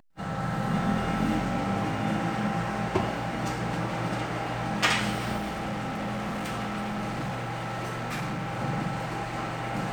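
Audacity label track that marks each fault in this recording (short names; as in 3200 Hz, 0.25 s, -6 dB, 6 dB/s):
5.370000	8.590000	clipped -28.5 dBFS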